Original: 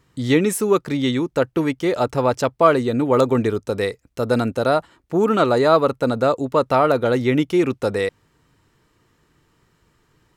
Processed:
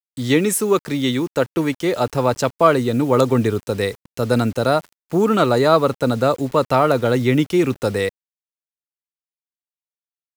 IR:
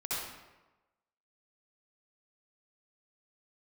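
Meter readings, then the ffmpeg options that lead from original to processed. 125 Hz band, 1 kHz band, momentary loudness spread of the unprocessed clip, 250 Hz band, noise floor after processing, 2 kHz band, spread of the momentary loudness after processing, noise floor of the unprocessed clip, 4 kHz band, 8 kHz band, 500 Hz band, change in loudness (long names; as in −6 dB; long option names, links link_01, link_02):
+3.5 dB, +0.5 dB, 7 LU, +1.0 dB, below −85 dBFS, +1.0 dB, 6 LU, −64 dBFS, +3.0 dB, can't be measured, +0.5 dB, +1.0 dB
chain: -filter_complex "[0:a]highshelf=frequency=3600:gain=5.5,acrossover=split=200|4800[link_01][link_02][link_03];[link_01]dynaudnorm=framelen=900:gausssize=5:maxgain=5dB[link_04];[link_04][link_02][link_03]amix=inputs=3:normalize=0,acrusher=bits=6:mix=0:aa=0.000001"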